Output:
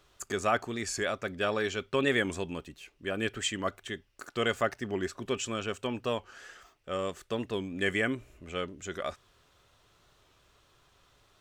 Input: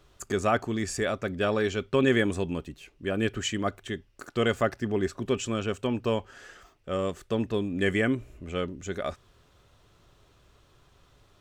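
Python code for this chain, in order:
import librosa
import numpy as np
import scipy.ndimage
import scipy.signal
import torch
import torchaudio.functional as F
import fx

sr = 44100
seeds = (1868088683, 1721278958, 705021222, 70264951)

y = fx.low_shelf(x, sr, hz=490.0, db=-8.5)
y = fx.record_warp(y, sr, rpm=45.0, depth_cents=100.0)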